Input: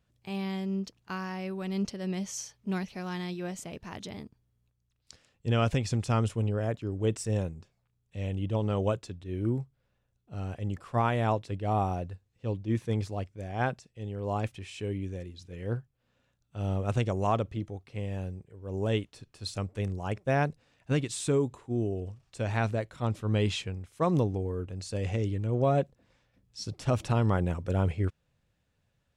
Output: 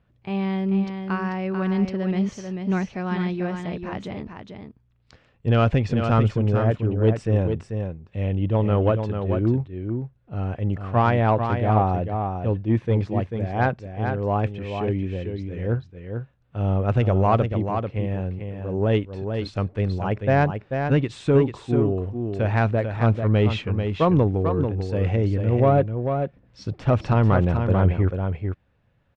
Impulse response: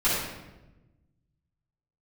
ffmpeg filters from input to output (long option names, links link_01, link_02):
-af "lowpass=2300,aeval=exprs='0.2*(cos(1*acos(clip(val(0)/0.2,-1,1)))-cos(1*PI/2))+0.01*(cos(5*acos(clip(val(0)/0.2,-1,1)))-cos(5*PI/2))':channel_layout=same,aecho=1:1:441:0.473,volume=7dB"